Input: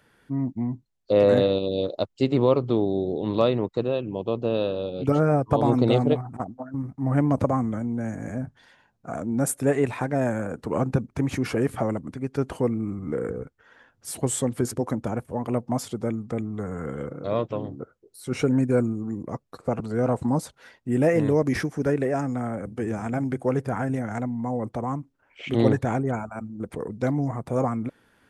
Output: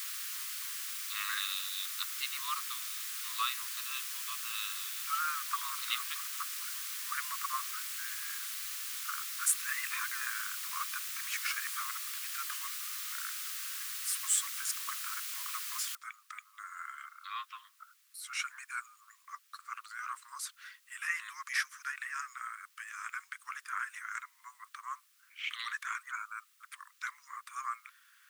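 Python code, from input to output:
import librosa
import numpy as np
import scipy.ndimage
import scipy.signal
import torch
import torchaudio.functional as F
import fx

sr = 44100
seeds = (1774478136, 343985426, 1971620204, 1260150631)

y = fx.lower_of_two(x, sr, delay_ms=0.74, at=(8.39, 9.1), fade=0.02)
y = fx.noise_floor_step(y, sr, seeds[0], at_s=15.95, before_db=-40, after_db=-68, tilt_db=0.0)
y = scipy.signal.sosfilt(scipy.signal.butter(16, 1100.0, 'highpass', fs=sr, output='sos'), y)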